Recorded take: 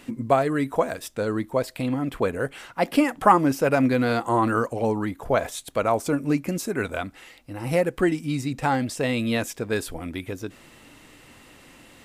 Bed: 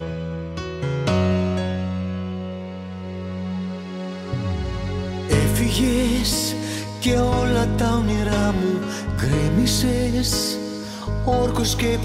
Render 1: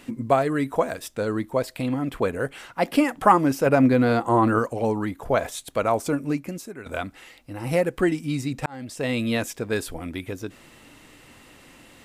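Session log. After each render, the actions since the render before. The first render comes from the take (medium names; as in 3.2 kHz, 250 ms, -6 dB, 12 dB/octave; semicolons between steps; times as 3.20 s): 3.66–4.59 s: tilt shelf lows +3.5 dB, about 1.5 kHz; 6.06–6.86 s: fade out, to -16 dB; 8.66–9.14 s: fade in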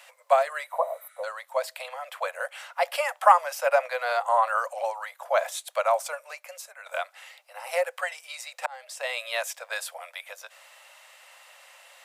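0.74–1.21 s: spectral replace 1.2–11 kHz before; steep high-pass 540 Hz 96 dB/octave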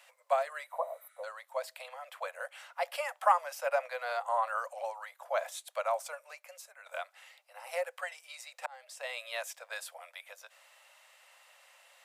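trim -8.5 dB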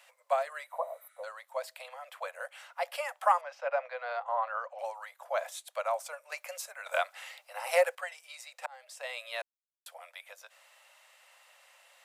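3.41–4.79 s: distance through air 210 m; 6.32–7.95 s: gain +9.5 dB; 9.42–9.86 s: mute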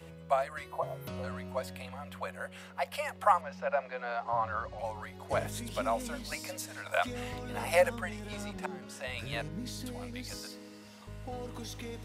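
add bed -21.5 dB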